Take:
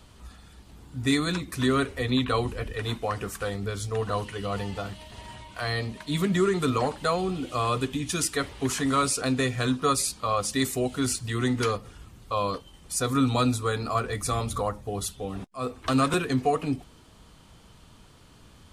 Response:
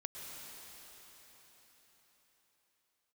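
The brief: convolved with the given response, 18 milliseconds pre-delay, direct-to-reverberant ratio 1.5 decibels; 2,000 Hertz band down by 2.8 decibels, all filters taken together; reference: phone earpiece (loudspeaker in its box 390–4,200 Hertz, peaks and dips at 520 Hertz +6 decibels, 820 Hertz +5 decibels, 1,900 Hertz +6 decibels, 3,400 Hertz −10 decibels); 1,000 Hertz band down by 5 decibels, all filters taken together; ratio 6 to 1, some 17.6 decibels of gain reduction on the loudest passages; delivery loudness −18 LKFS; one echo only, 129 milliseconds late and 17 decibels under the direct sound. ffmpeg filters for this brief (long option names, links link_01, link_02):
-filter_complex "[0:a]equalizer=frequency=1000:width_type=o:gain=-8,equalizer=frequency=2000:width_type=o:gain=-4.5,acompressor=threshold=-40dB:ratio=6,aecho=1:1:129:0.141,asplit=2[link_01][link_02];[1:a]atrim=start_sample=2205,adelay=18[link_03];[link_02][link_03]afir=irnorm=-1:irlink=0,volume=-0.5dB[link_04];[link_01][link_04]amix=inputs=2:normalize=0,highpass=390,equalizer=frequency=520:width_type=q:width=4:gain=6,equalizer=frequency=820:width_type=q:width=4:gain=5,equalizer=frequency=1900:width_type=q:width=4:gain=6,equalizer=frequency=3400:width_type=q:width=4:gain=-10,lowpass=frequency=4200:width=0.5412,lowpass=frequency=4200:width=1.3066,volume=25dB"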